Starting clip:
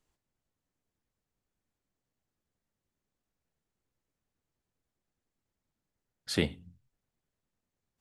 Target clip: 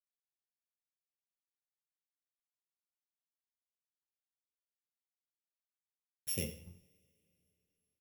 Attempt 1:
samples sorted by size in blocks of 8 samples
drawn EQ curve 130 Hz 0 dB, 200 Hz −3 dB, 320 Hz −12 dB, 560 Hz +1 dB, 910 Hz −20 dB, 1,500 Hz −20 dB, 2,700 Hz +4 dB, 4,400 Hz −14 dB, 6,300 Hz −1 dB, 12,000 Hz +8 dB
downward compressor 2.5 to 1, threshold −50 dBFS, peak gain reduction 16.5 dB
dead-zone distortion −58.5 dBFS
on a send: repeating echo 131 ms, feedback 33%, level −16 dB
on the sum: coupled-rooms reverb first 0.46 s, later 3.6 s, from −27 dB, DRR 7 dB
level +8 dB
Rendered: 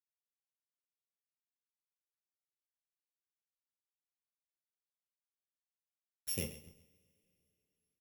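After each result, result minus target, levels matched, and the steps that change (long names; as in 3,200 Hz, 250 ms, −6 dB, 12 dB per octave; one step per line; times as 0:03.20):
echo 41 ms late; dead-zone distortion: distortion +6 dB
change: repeating echo 90 ms, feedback 33%, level −16 dB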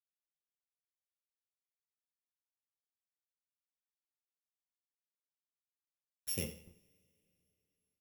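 dead-zone distortion: distortion +6 dB
change: dead-zone distortion −67.5 dBFS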